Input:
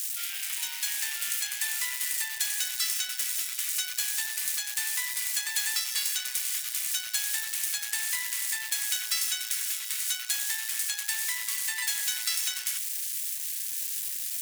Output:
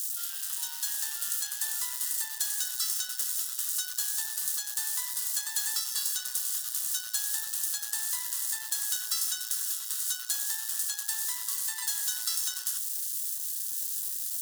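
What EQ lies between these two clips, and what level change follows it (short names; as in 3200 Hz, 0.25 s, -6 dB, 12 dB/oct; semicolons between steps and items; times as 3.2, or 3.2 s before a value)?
fixed phaser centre 610 Hz, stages 6; 0.0 dB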